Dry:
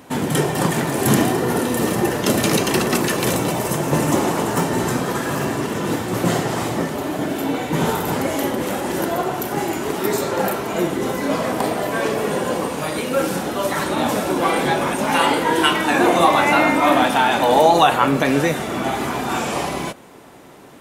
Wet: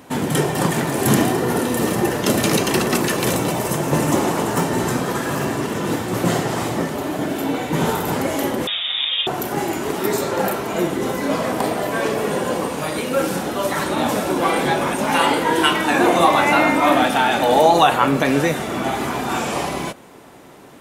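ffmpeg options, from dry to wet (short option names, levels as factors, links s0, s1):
-filter_complex "[0:a]asettb=1/sr,asplit=3[s0][s1][s2];[s0]atrim=end=8.674[s3];[s1]atrim=start=8.67:end=9.27,asetpts=PTS-STARTPTS,afade=t=in:d=0.004:c=qsin,afade=t=out:st=0.596:d=0.004:c=qsin,lowpass=f=3300:t=q:w=0.5098,lowpass=f=3300:t=q:w=0.6013,lowpass=f=3300:t=q:w=0.9,lowpass=f=3300:t=q:w=2.563,afreqshift=-3900[s4];[s2]atrim=start=9.266[s5];[s3][s4]acrossfade=d=0.004:c1=hsin:c2=qsin[s6];[s6][s5]acrossfade=d=0.004:c1=qsin:c2=hsin,asettb=1/sr,asplit=3[s7][s8][s9];[s7]atrim=end=16.964[s10];[s8]atrim=start=16.96:end=17.63,asetpts=PTS-STARTPTS,afade=t=in:d=0.004:c=qsin,afade=t=out:st=0.666:d=0.004:c=qsin,bandreject=f=990:w=7.9[s11];[s9]atrim=start=17.626[s12];[s10][s11]acrossfade=d=0.004:c1=hsin:c2=qsin[s13];[s13][s12]acrossfade=d=0.004:c1=qsin:c2=hsin"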